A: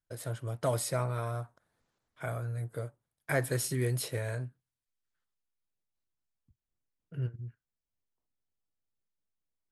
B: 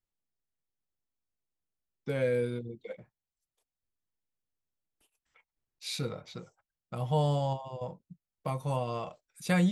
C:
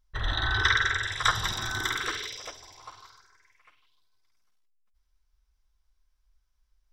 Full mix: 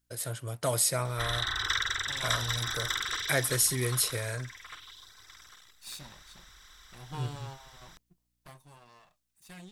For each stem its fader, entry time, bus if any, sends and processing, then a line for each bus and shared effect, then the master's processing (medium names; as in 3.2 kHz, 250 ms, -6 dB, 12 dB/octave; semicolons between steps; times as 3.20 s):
-1.0 dB, 0.00 s, no send, none
8.42 s -13.5 dB -> 8.66 s -22.5 dB, 0.00 s, no send, comb filter that takes the minimum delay 1.1 ms; hum 60 Hz, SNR 30 dB
-13.5 dB, 1.05 s, no send, spectral levelling over time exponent 0.4; reverb removal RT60 1 s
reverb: none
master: treble shelf 2.1 kHz +12 dB